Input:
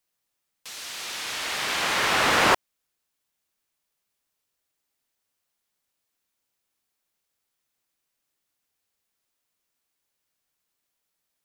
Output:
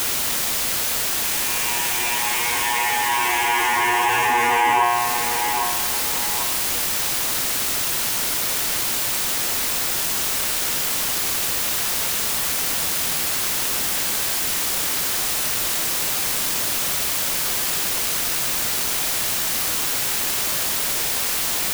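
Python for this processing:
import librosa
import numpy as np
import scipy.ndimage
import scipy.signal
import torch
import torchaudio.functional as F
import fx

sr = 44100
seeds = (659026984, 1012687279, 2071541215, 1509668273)

p1 = fx.fixed_phaser(x, sr, hz=870.0, stages=8)
p2 = fx.comb_fb(p1, sr, f0_hz=120.0, decay_s=0.42, harmonics='all', damping=0.0, mix_pct=90)
p3 = p2 + fx.echo_feedback(p2, sr, ms=422, feedback_pct=26, wet_db=-16.5, dry=0)
p4 = fx.stretch_vocoder(p3, sr, factor=1.9)
p5 = fx.peak_eq(p4, sr, hz=910.0, db=9.0, octaves=0.55)
p6 = fx.quant_dither(p5, sr, seeds[0], bits=6, dither='triangular')
p7 = p5 + (p6 * librosa.db_to_amplitude(-7.5))
p8 = fx.env_flatten(p7, sr, amount_pct=70)
y = p8 * librosa.db_to_amplitude(5.5)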